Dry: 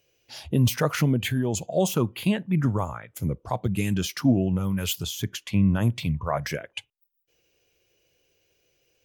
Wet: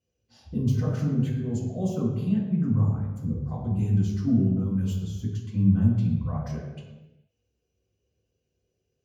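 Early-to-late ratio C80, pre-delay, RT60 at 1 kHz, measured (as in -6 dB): 4.0 dB, 3 ms, n/a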